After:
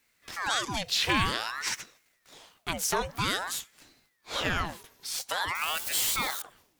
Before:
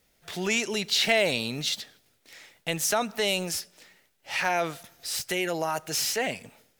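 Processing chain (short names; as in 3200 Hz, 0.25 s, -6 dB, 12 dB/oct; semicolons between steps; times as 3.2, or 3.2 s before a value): 5.55–6.42 switching spikes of -24.5 dBFS; ring modulator with a swept carrier 1200 Hz, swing 80%, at 0.51 Hz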